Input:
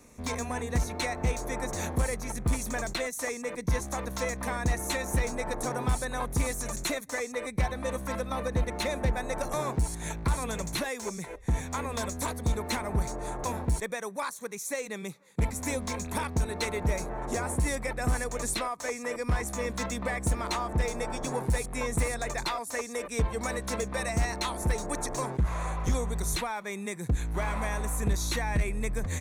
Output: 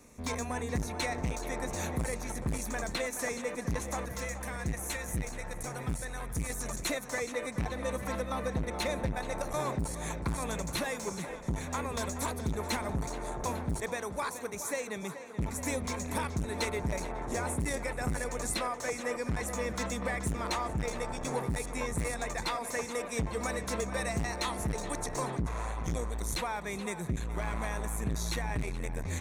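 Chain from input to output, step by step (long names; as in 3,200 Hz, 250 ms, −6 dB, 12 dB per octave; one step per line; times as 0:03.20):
0:04.06–0:06.50: octave-band graphic EQ 250/500/1,000/4,000 Hz −7/−6/−7/−5 dB
tape delay 426 ms, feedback 80%, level −11 dB, low-pass 4,600 Hz
saturating transformer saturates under 200 Hz
level −1.5 dB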